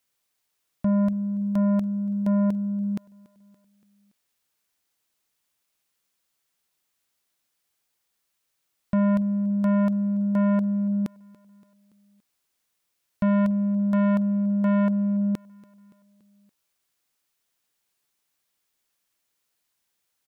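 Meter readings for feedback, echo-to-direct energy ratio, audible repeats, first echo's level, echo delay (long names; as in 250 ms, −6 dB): 58%, −21.5 dB, 3, −23.0 dB, 285 ms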